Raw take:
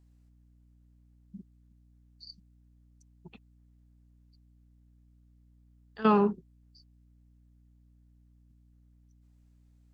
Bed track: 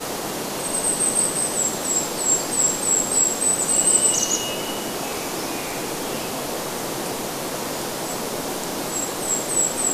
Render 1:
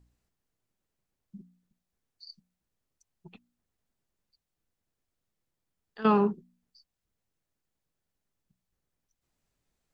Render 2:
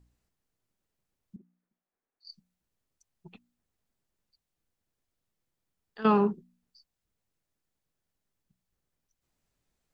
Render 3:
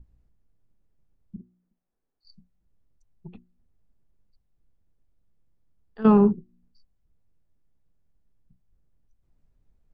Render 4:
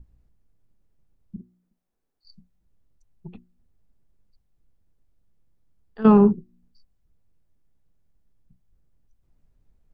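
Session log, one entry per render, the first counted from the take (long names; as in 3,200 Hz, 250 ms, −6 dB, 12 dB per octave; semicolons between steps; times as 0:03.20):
hum removal 60 Hz, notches 5
0:01.36–0:02.25: three-way crossover with the lows and the highs turned down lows −19 dB, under 260 Hz, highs −22 dB, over 2,300 Hz
spectral tilt −4 dB per octave; mains-hum notches 60/120/180/240/300/360 Hz
level +2.5 dB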